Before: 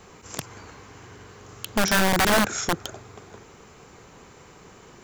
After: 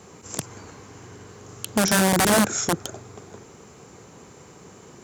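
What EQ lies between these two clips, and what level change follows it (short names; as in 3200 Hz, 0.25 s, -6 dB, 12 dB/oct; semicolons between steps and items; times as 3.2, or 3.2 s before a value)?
HPF 89 Hz; tilt shelf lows +4.5 dB, about 890 Hz; bell 9300 Hz +12 dB 1.4 oct; 0.0 dB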